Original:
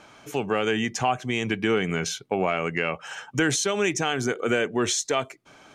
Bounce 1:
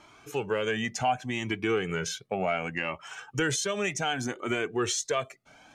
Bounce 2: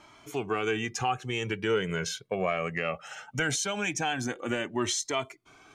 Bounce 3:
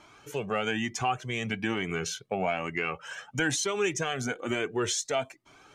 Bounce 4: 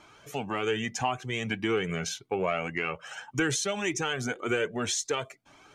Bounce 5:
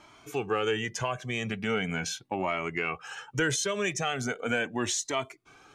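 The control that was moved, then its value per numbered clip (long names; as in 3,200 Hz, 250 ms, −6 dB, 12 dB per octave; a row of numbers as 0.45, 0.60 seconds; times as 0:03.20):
flanger whose copies keep moving one way, speed: 0.67, 0.2, 1.1, 1.8, 0.39 Hertz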